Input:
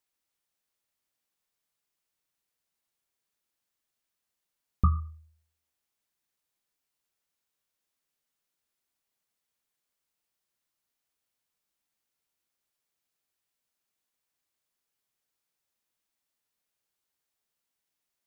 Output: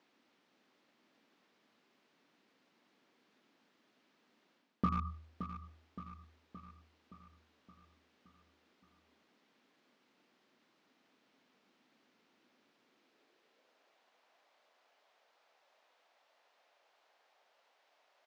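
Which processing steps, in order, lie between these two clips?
peaking EQ 250 Hz +2.5 dB 2.1 oct; reverse; compression 6:1, threshold -33 dBFS, peak gain reduction 15.5 dB; reverse; peak limiter -36.5 dBFS, peak gain reduction 11 dB; high-pass sweep 240 Hz -> 640 Hz, 12.78–14.02 s; in parallel at -11 dB: word length cut 8-bit, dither none; on the sum: distance through air 230 m; feedback delay 570 ms, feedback 57%, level -10.5 dB; trim +18 dB

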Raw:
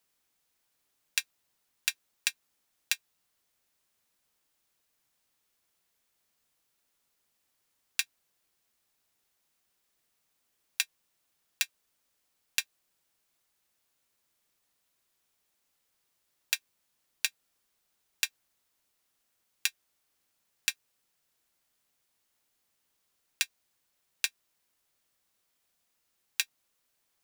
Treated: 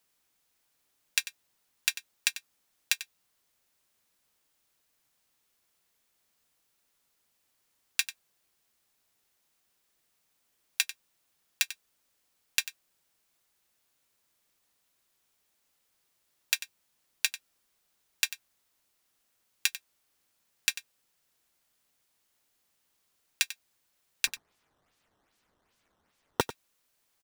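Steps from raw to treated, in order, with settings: 24.27–26.41 s: decimation with a swept rate 11×, swing 160% 2.5 Hz; delay 94 ms -14 dB; trim +2 dB

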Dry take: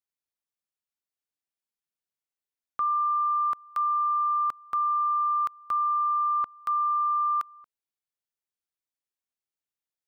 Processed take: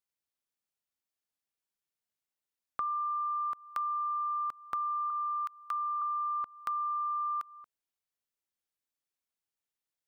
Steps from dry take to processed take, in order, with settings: 5.10–6.02 s: high-pass 1.1 kHz 12 dB/octave; compression, threshold -32 dBFS, peak gain reduction 7.5 dB

